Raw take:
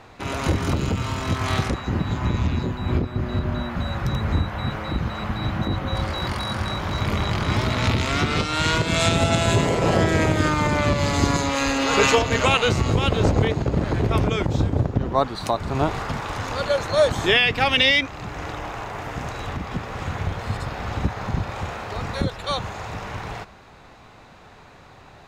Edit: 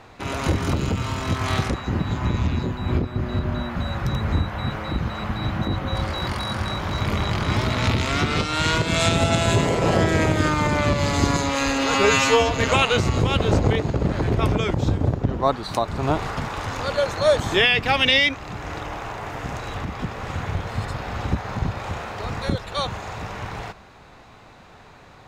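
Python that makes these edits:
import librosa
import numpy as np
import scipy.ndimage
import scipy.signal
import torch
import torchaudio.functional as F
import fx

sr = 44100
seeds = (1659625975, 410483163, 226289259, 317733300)

y = fx.edit(x, sr, fx.stretch_span(start_s=11.95, length_s=0.28, factor=2.0), tone=tone)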